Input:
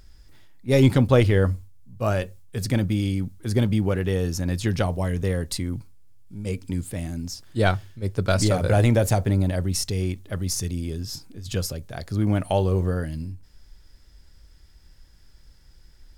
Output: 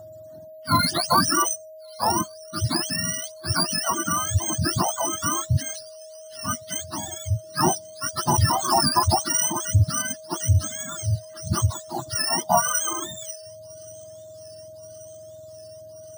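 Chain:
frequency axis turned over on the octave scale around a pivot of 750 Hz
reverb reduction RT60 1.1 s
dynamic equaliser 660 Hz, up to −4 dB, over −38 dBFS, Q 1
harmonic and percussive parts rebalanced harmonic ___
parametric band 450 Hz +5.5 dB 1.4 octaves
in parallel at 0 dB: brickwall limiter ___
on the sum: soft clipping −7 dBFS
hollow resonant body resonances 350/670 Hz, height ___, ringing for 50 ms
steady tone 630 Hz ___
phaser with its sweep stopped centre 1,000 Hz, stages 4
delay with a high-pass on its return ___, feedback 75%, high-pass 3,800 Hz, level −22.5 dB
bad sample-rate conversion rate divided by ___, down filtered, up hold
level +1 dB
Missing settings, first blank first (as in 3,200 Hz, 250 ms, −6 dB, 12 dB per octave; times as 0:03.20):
−3 dB, −15.5 dBFS, 13 dB, −37 dBFS, 1,130 ms, 3×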